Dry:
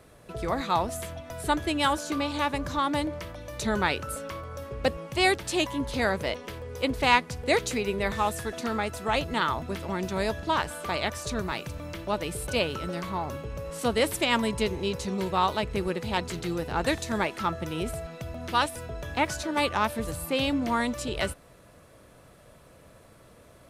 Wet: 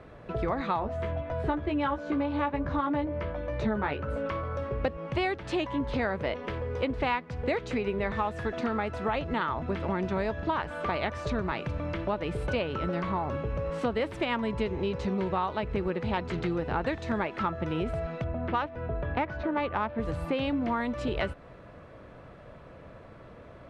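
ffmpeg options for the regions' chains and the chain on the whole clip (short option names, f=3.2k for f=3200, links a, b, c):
-filter_complex "[0:a]asettb=1/sr,asplit=3[a][b][c];[a]atrim=end=0.804[d];[b]atrim=start=0.8:end=4.26,asetpts=PTS-STARTPTS,afade=t=in:d=0.004:c=qsin,afade=t=out:st=3.456:d=0.004:c=qsin,lowpass=f=2k:p=1,asplit=2[e][f];[f]adelay=14,volume=-4dB[g];[e][g]amix=inputs=2:normalize=0,atrim=end_sample=152586[h];[c]atrim=start=4.256[i];[d][h]acrossfade=d=0.004:c1=hsin:c2=qsin[j];[j][i]acrossfade=d=0.004:c1=qsin:c2=hsin,asettb=1/sr,asplit=3[k][l][m];[k]atrim=end=18.244[n];[l]atrim=start=18.24:end=20,asetpts=PTS-STARTPTS,afade=t=in:d=0.004:c=qsin,afade=t=out:st=1.756:d=0.004:c=qsin,adynamicsmooth=sensitivity=1:basefreq=2.4k,equalizer=f=8.2k:w=3.9:g=-9.5[o];[m]atrim=start=19.996[p];[n][o]acrossfade=d=0.004:c1=hsin:c2=qsin[q];[q][p]acrossfade=d=0.004:c1=qsin:c2=hsin,lowpass=2.3k,acompressor=threshold=-32dB:ratio=5,volume=5.5dB"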